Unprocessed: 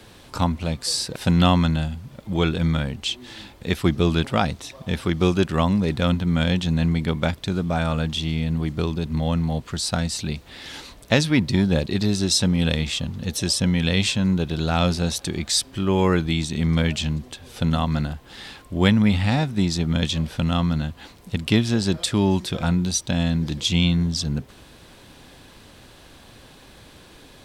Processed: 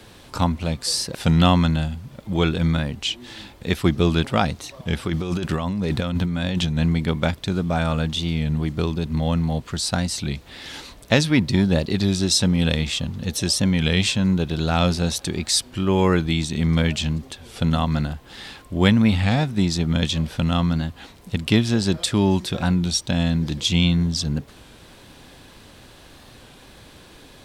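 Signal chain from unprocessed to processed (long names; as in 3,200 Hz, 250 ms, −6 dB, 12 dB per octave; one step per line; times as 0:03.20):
0:05.06–0:06.78: compressor whose output falls as the input rises −24 dBFS, ratio −1
wow of a warped record 33 1/3 rpm, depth 100 cents
level +1 dB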